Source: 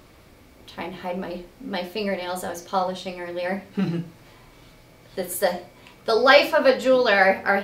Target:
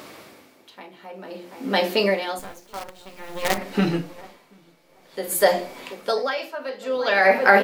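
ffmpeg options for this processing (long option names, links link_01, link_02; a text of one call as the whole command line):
ffmpeg -i in.wav -filter_complex "[0:a]bandreject=frequency=60:width_type=h:width=6,bandreject=frequency=120:width_type=h:width=6,bandreject=frequency=180:width_type=h:width=6,bandreject=frequency=240:width_type=h:width=6,bandreject=frequency=300:width_type=h:width=6,bandreject=frequency=360:width_type=h:width=6,bandreject=frequency=420:width_type=h:width=6,bandreject=frequency=480:width_type=h:width=6,bandreject=frequency=540:width_type=h:width=6,asplit=2[link_01][link_02];[link_02]acompressor=threshold=-32dB:ratio=5,volume=-1.5dB[link_03];[link_01][link_03]amix=inputs=2:normalize=0,highpass=240,asettb=1/sr,asplit=3[link_04][link_05][link_06];[link_04]atrim=end=2.394[link_07];[link_05]atrim=start=2.39:end=3.58,asetpts=PTS-STARTPTS,afade=type=in:duration=0.004:curve=qsin,afade=type=out:start_time=1.186:duration=0.004:curve=qsin,acrusher=bits=4:dc=4:mix=0:aa=0.000001[link_08];[link_06]atrim=start=3.576[link_09];[link_07][link_08]acrossfade=duration=0.004:curve1=hsin:curve2=qsin[link_10];[link_10][link_09]acrossfade=duration=0.004:curve1=qsin:curve2=hsin,asplit=2[link_11][link_12];[link_12]adelay=734,lowpass=frequency=1300:poles=1,volume=-14dB,asplit=2[link_13][link_14];[link_14]adelay=734,lowpass=frequency=1300:poles=1,volume=0.46,asplit=2[link_15][link_16];[link_16]adelay=734,lowpass=frequency=1300:poles=1,volume=0.46,asplit=2[link_17][link_18];[link_18]adelay=734,lowpass=frequency=1300:poles=1,volume=0.46[link_19];[link_11][link_13][link_15][link_17][link_19]amix=inputs=5:normalize=0,alimiter=level_in=6.5dB:limit=-1dB:release=50:level=0:latency=1,aeval=exprs='val(0)*pow(10,-20*(0.5-0.5*cos(2*PI*0.53*n/s))/20)':channel_layout=same" out.wav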